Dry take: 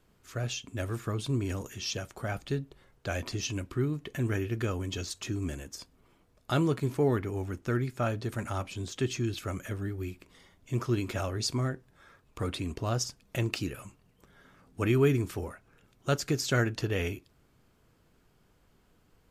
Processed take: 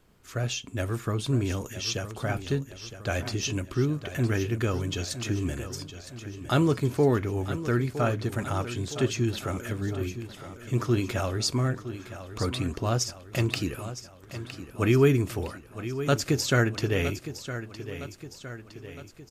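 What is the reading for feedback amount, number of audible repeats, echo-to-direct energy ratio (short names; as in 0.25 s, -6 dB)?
53%, 5, -10.5 dB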